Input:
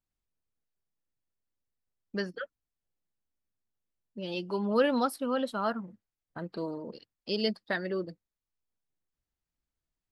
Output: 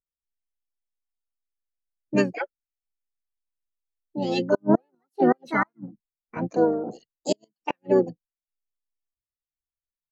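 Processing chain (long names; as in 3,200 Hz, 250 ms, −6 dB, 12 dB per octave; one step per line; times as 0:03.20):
pitch-shifted copies added −7 semitones −9 dB, +4 semitones −10 dB, +7 semitones −1 dB
gate with flip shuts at −16 dBFS, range −40 dB
every bin expanded away from the loudest bin 1.5 to 1
level +7.5 dB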